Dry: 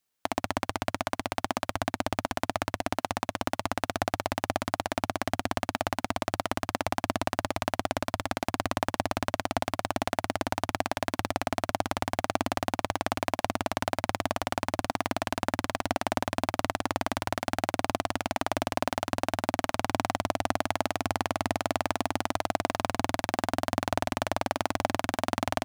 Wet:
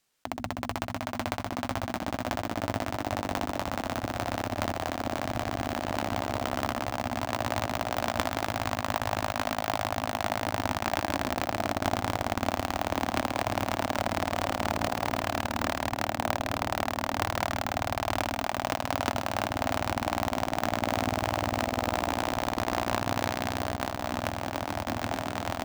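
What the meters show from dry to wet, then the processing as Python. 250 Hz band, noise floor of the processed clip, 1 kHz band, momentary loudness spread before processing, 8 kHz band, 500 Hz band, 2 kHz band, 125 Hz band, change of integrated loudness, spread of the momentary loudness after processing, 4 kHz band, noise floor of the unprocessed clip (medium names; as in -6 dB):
0.0 dB, -38 dBFS, 0.0 dB, 2 LU, -1.0 dB, 0.0 dB, +0.5 dB, +2.5 dB, +0.5 dB, 3 LU, +0.5 dB, -68 dBFS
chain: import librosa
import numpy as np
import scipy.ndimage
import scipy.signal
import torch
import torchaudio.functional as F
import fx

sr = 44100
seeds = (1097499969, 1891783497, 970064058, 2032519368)

p1 = np.repeat(scipy.signal.resample_poly(x, 1, 2), 2)[:len(x)]
p2 = fx.hum_notches(p1, sr, base_hz=60, count=4)
p3 = p2 + fx.echo_split(p2, sr, split_hz=570.0, low_ms=572, high_ms=132, feedback_pct=52, wet_db=-9, dry=0)
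p4 = fx.over_compress(p3, sr, threshold_db=-33.0, ratio=-0.5)
y = p4 * 10.0 ** (4.0 / 20.0)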